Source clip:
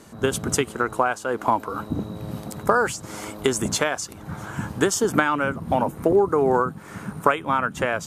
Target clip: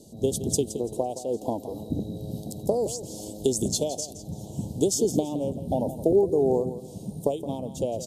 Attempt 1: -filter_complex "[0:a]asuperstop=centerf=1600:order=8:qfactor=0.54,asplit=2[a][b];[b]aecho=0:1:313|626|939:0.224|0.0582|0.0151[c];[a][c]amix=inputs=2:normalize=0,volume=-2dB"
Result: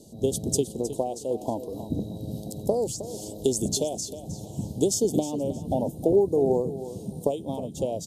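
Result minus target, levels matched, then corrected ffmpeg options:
echo 0.145 s late
-filter_complex "[0:a]asuperstop=centerf=1600:order=8:qfactor=0.54,asplit=2[a][b];[b]aecho=0:1:168|336|504:0.224|0.0582|0.0151[c];[a][c]amix=inputs=2:normalize=0,volume=-2dB"

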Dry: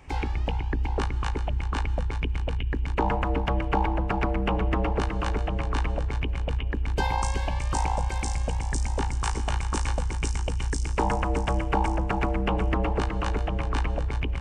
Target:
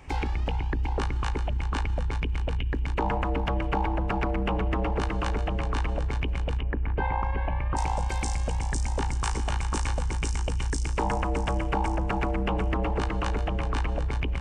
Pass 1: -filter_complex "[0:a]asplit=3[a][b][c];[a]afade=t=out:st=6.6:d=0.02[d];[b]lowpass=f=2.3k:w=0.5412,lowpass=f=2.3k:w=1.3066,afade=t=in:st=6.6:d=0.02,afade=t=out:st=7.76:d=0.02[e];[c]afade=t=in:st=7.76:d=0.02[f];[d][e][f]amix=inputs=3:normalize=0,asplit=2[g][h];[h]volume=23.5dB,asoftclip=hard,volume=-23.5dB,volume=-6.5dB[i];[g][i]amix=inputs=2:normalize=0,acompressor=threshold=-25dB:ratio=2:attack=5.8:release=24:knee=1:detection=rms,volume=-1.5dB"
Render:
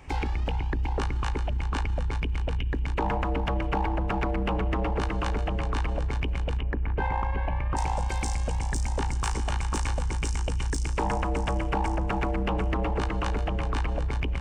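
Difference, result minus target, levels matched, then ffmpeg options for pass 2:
overloaded stage: distortion +27 dB
-filter_complex "[0:a]asplit=3[a][b][c];[a]afade=t=out:st=6.6:d=0.02[d];[b]lowpass=f=2.3k:w=0.5412,lowpass=f=2.3k:w=1.3066,afade=t=in:st=6.6:d=0.02,afade=t=out:st=7.76:d=0.02[e];[c]afade=t=in:st=7.76:d=0.02[f];[d][e][f]amix=inputs=3:normalize=0,asplit=2[g][h];[h]volume=14.5dB,asoftclip=hard,volume=-14.5dB,volume=-6.5dB[i];[g][i]amix=inputs=2:normalize=0,acompressor=threshold=-25dB:ratio=2:attack=5.8:release=24:knee=1:detection=rms,volume=-1.5dB"

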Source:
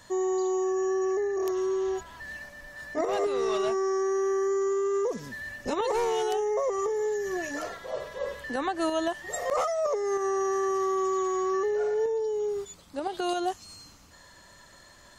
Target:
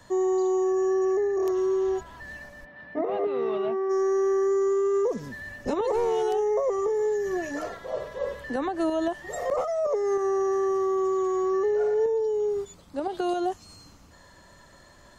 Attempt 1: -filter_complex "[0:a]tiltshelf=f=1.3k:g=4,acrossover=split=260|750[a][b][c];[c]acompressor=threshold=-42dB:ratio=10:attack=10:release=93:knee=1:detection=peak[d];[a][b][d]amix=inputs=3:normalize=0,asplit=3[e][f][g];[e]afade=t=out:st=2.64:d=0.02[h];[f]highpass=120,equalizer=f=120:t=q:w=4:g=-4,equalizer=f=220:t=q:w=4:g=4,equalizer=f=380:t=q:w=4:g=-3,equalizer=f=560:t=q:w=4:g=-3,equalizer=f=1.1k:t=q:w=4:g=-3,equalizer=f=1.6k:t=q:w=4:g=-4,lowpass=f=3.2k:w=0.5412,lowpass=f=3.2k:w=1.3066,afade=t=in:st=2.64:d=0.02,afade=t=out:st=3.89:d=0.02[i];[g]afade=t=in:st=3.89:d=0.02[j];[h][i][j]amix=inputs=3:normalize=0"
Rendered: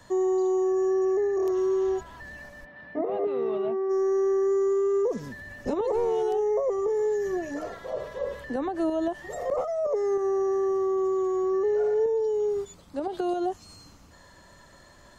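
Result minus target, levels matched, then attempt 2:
compressor: peak gain reduction +6.5 dB
-filter_complex "[0:a]tiltshelf=f=1.3k:g=4,acrossover=split=260|750[a][b][c];[c]acompressor=threshold=-35dB:ratio=10:attack=10:release=93:knee=1:detection=peak[d];[a][b][d]amix=inputs=3:normalize=0,asplit=3[e][f][g];[e]afade=t=out:st=2.64:d=0.02[h];[f]highpass=120,equalizer=f=120:t=q:w=4:g=-4,equalizer=f=220:t=q:w=4:g=4,equalizer=f=380:t=q:w=4:g=-3,equalizer=f=560:t=q:w=4:g=-3,equalizer=f=1.1k:t=q:w=4:g=-3,equalizer=f=1.6k:t=q:w=4:g=-4,lowpass=f=3.2k:w=0.5412,lowpass=f=3.2k:w=1.3066,afade=t=in:st=2.64:d=0.02,afade=t=out:st=3.89:d=0.02[i];[g]afade=t=in:st=3.89:d=0.02[j];[h][i][j]amix=inputs=3:normalize=0"

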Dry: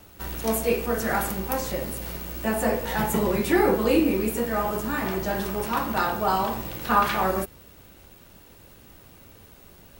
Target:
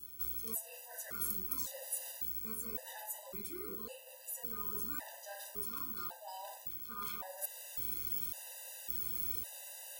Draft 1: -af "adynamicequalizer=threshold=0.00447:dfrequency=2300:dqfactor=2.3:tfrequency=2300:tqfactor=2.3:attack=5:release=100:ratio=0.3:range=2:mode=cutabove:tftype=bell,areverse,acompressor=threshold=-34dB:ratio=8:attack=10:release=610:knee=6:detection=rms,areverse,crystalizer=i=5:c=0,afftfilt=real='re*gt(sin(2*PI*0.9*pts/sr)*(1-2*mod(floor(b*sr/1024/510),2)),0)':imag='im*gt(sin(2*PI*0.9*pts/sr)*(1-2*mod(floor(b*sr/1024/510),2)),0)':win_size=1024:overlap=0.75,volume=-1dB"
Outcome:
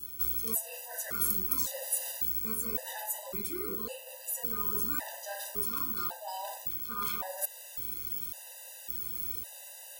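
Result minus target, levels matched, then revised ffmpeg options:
compressor: peak gain reduction -8 dB
-af "adynamicequalizer=threshold=0.00447:dfrequency=2300:dqfactor=2.3:tfrequency=2300:tqfactor=2.3:attack=5:release=100:ratio=0.3:range=2:mode=cutabove:tftype=bell,areverse,acompressor=threshold=-43dB:ratio=8:attack=10:release=610:knee=6:detection=rms,areverse,crystalizer=i=5:c=0,afftfilt=real='re*gt(sin(2*PI*0.9*pts/sr)*(1-2*mod(floor(b*sr/1024/510),2)),0)':imag='im*gt(sin(2*PI*0.9*pts/sr)*(1-2*mod(floor(b*sr/1024/510),2)),0)':win_size=1024:overlap=0.75,volume=-1dB"

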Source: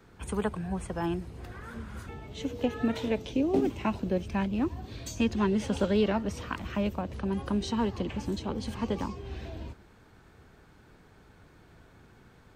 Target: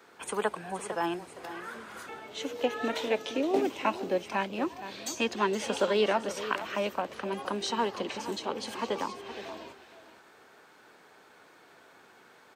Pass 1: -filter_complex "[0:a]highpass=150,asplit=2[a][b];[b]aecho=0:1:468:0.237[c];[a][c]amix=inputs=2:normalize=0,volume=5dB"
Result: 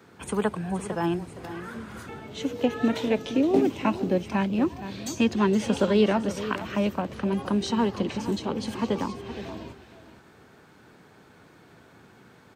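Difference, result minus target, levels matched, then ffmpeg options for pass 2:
125 Hz band +9.0 dB
-filter_complex "[0:a]highpass=470,asplit=2[a][b];[b]aecho=0:1:468:0.237[c];[a][c]amix=inputs=2:normalize=0,volume=5dB"

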